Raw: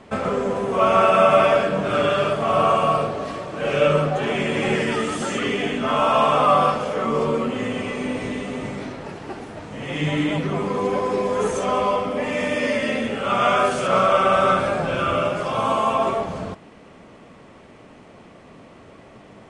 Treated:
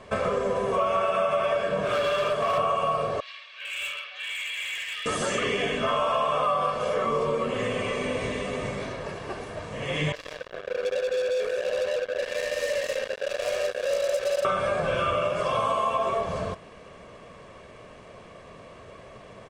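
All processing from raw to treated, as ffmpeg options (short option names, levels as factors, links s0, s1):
-filter_complex "[0:a]asettb=1/sr,asplit=3[s0][s1][s2];[s0]atrim=end=1.854[s3];[s1]atrim=start=1.85:end=2.58,asetpts=PTS-STARTPTS,afade=t=in:d=0.004:c=qsin,afade=t=out:st=0.726:d=0.004:c=qsin,volume=7.5,asoftclip=hard,volume=0.133,lowshelf=f=210:g=-7[s4];[s2]atrim=start=2.576[s5];[s3][s4]acrossfade=d=0.004:c1=hsin:c2=qsin[s6];[s6][s5]acrossfade=d=0.004:c1=qsin:c2=hsin,asettb=1/sr,asplit=3[s7][s8][s9];[s7]atrim=end=3.204[s10];[s8]atrim=start=3.2:end=5.06,asetpts=PTS-STARTPTS,afade=t=in:d=0.004:c=qsin,afade=t=out:st=1.856:d=0.004:c=qsin,asuperpass=centerf=3000:order=4:qfactor=1.4,asoftclip=type=hard:threshold=0.0299[s11];[s9]atrim=start=5.056[s12];[s10][s11]acrossfade=d=0.004:c1=hsin:c2=qsin[s13];[s13][s12]acrossfade=d=0.004:c1=qsin:c2=hsin,asettb=1/sr,asplit=3[s14][s15][s16];[s14]atrim=end=10.124[s17];[s15]atrim=start=10.12:end=14.45,asetpts=PTS-STARTPTS,afade=t=in:d=0.004:c=qsin,afade=t=out:st=4.326:d=0.004:c=qsin,asplit=3[s18][s19][s20];[s18]bandpass=f=530:t=q:w=8,volume=1[s21];[s19]bandpass=f=1840:t=q:w=8,volume=0.501[s22];[s20]bandpass=f=2480:t=q:w=8,volume=0.355[s23];[s21][s22][s23]amix=inputs=3:normalize=0,acrusher=bits=4:mix=0:aa=0.5,adynamicequalizer=threshold=0.00447:dfrequency=5700:dqfactor=0.7:tfrequency=5700:tqfactor=0.7:attack=5:release=100:ratio=0.375:range=2.5:mode=boostabove:tftype=highshelf[s24];[s16]atrim=start=14.446[s25];[s17][s24]acrossfade=d=0.004:c1=hsin:c2=qsin[s26];[s26][s25]acrossfade=d=0.004:c1=qsin:c2=hsin,equalizer=f=170:w=0.44:g=-3,aecho=1:1:1.8:0.5,acompressor=threshold=0.0794:ratio=6"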